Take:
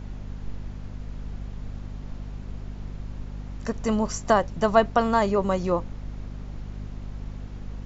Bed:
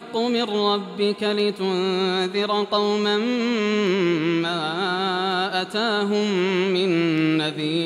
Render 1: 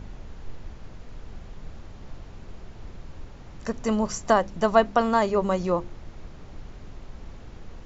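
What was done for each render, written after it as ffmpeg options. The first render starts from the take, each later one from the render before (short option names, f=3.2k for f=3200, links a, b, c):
-af "bandreject=f=50:t=h:w=4,bandreject=f=100:t=h:w=4,bandreject=f=150:t=h:w=4,bandreject=f=200:t=h:w=4,bandreject=f=250:t=h:w=4,bandreject=f=300:t=h:w=4,bandreject=f=350:t=h:w=4"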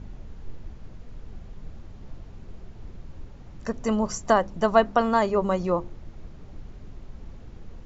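-af "afftdn=nr=6:nf=-44"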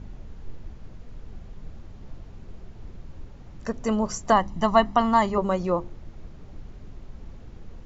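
-filter_complex "[0:a]asettb=1/sr,asplit=3[a][b][c];[a]atrim=end=4.324[d];[b]atrim=start=4.32:end=5.38,asetpts=PTS-STARTPTS,afade=t=in:d=0.004:c=qsin,afade=t=out:st=1.056:d=0.004:c=qsin,aecho=1:1:1:0.65,atrim=end_sample=46746[e];[c]atrim=start=5.376[f];[d][e]acrossfade=d=0.004:c1=hsin:c2=qsin[g];[g][f]acrossfade=d=0.004:c1=qsin:c2=hsin"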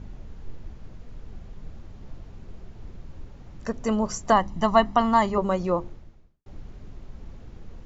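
-filter_complex "[0:a]asplit=2[a][b];[a]atrim=end=6.46,asetpts=PTS-STARTPTS,afade=t=out:st=5.89:d=0.57:c=qua[c];[b]atrim=start=6.46,asetpts=PTS-STARTPTS,afade=t=in:d=0.004:c=hsin[d];[c][d]concat=n=2:v=0:a=1"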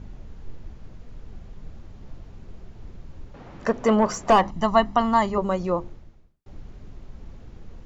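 -filter_complex "[0:a]asettb=1/sr,asplit=3[a][b][c];[a]atrim=end=3.344[d];[b]atrim=start=3.34:end=4.51,asetpts=PTS-STARTPTS,afade=t=in:d=0.004:c=qsin,afade=t=out:st=1.166:d=0.004:c=qsin,asplit=2[e][f];[f]highpass=f=720:p=1,volume=21dB,asoftclip=type=tanh:threshold=-6dB[g];[e][g]amix=inputs=2:normalize=0,lowpass=f=1.2k:p=1,volume=-6dB[h];[c]atrim=start=4.506[i];[d][h]acrossfade=d=0.004:c1=hsin:c2=qsin[j];[j][i]acrossfade=d=0.004:c1=qsin:c2=hsin"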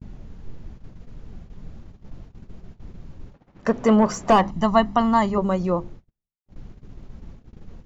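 -af "agate=range=-36dB:threshold=-39dB:ratio=16:detection=peak,equalizer=f=180:t=o:w=1.4:g=5"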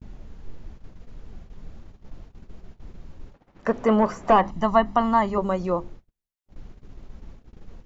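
-filter_complex "[0:a]equalizer=f=140:w=0.69:g=-6,acrossover=split=2700[a][b];[b]acompressor=threshold=-49dB:ratio=4:attack=1:release=60[c];[a][c]amix=inputs=2:normalize=0"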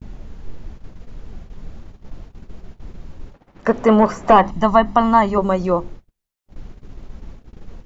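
-af "volume=6.5dB,alimiter=limit=-2dB:level=0:latency=1"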